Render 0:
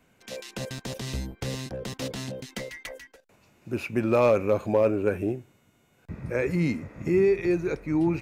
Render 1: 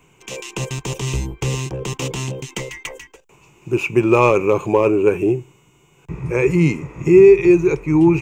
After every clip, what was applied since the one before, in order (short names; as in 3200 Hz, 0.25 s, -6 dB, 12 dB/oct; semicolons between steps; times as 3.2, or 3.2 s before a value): ripple EQ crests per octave 0.71, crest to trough 12 dB; gain +7.5 dB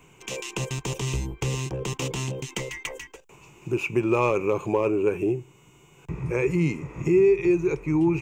compressor 1.5:1, threshold -34 dBFS, peak gain reduction 10 dB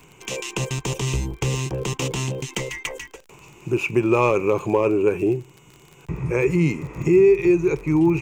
crackle 33/s -37 dBFS; gain +4 dB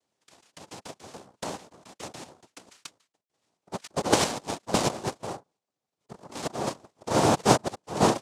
added harmonics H 3 -12 dB, 7 -30 dB, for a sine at -6.5 dBFS; chopper 1.5 Hz, depth 60%, duty 35%; noise vocoder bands 2; gain +1.5 dB